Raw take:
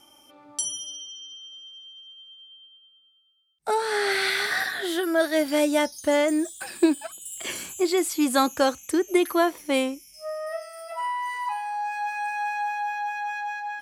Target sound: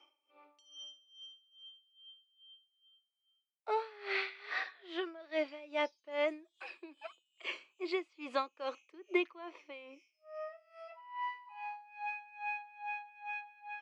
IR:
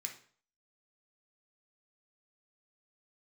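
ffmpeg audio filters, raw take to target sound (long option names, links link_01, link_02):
-af "highpass=frequency=370:width=0.5412,highpass=frequency=370:width=1.3066,equalizer=frequency=760:width_type=q:width=4:gain=-5,equalizer=frequency=1100:width_type=q:width=4:gain=4,equalizer=frequency=1600:width_type=q:width=4:gain=-8,equalizer=frequency=2500:width_type=q:width=4:gain=8,equalizer=frequency=3600:width_type=q:width=4:gain=-4,lowpass=frequency=3900:width=0.5412,lowpass=frequency=3900:width=1.3066,aeval=exprs='val(0)*pow(10,-21*(0.5-0.5*cos(2*PI*2.4*n/s))/20)':channel_layout=same,volume=-7dB"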